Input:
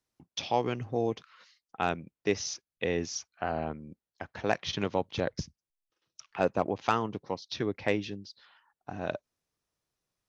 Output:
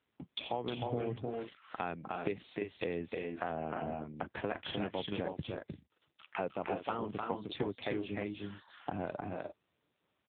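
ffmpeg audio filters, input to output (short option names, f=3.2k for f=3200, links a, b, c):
-filter_complex "[0:a]asettb=1/sr,asplit=3[a][b][c];[a]atrim=end=2.324[d];[b]atrim=start=2.32:end=2.97,asetpts=PTS-STARTPTS,afade=t=in:d=0.004:c=qsin,afade=t=out:st=0.646:d=0.004:c=qsin,equalizer=f=130:w=4.8:g=-7[e];[c]atrim=start=2.966[f];[d][e]acrossfade=d=0.004:c1=hsin:c2=qsin[g];[g][f]acrossfade=d=0.004:c1=qsin:c2=hsin,asplit=2[h][i];[i]alimiter=limit=-19.5dB:level=0:latency=1:release=14,volume=0dB[j];[h][j]amix=inputs=2:normalize=0,acompressor=threshold=-38dB:ratio=5,aecho=1:1:307|346|349:0.668|0.355|0.2,volume=3.5dB" -ar 8000 -c:a libopencore_amrnb -b:a 6700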